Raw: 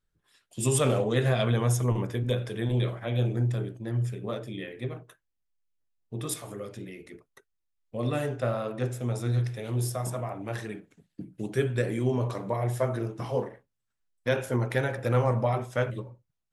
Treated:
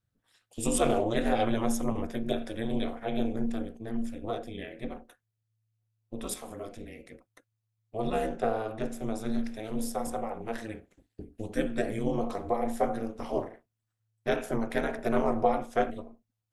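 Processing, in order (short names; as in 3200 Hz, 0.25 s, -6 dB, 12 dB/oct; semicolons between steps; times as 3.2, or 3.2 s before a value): bell 610 Hz +8 dB 0.21 oct; ring modulator 110 Hz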